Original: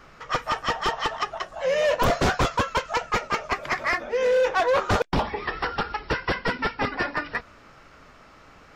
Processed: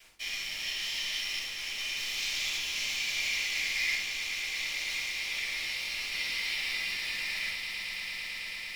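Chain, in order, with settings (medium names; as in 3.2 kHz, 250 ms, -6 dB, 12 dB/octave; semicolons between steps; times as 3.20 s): spectrogram pixelated in time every 200 ms; reverse; compression, threshold -37 dBFS, peak gain reduction 15 dB; reverse; elliptic high-pass 2.2 kHz, stop band 40 dB; crossover distortion -59.5 dBFS; on a send: echo with a slow build-up 111 ms, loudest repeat 8, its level -12.5 dB; on the sum: simulated room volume 230 m³, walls furnished, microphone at 6.1 m; trim +8 dB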